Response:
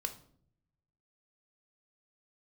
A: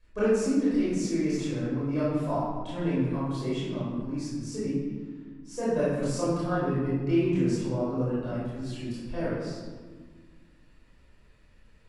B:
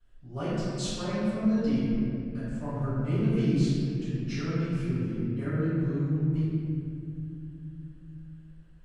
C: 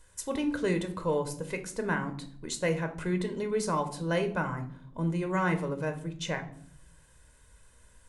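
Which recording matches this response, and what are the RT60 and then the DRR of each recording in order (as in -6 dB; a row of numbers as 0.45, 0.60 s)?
C; 1.6, 2.7, 0.60 s; -11.0, -18.0, 6.0 dB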